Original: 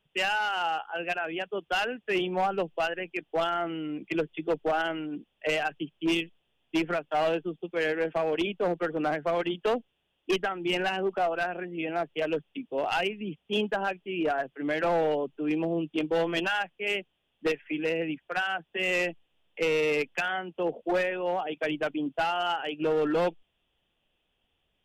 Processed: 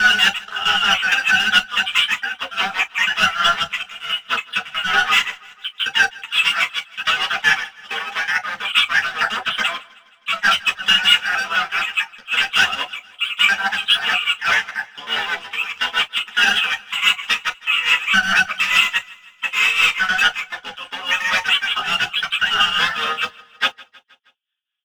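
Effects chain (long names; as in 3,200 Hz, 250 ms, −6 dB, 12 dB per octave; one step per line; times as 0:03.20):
slices reordered back to front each 93 ms, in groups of 5
high-pass filter 1,300 Hz 24 dB per octave
comb filter 3.9 ms, depth 90%
leveller curve on the samples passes 5
shaped tremolo triangle 4.7 Hz, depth 75%
pitch-shifted copies added −12 semitones −11 dB, +3 semitones −16 dB
multi-voice chorus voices 6, 0.88 Hz, delay 12 ms, depth 3.2 ms
repeating echo 158 ms, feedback 56%, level −23 dB
convolution reverb, pre-delay 3 ms, DRR 7 dB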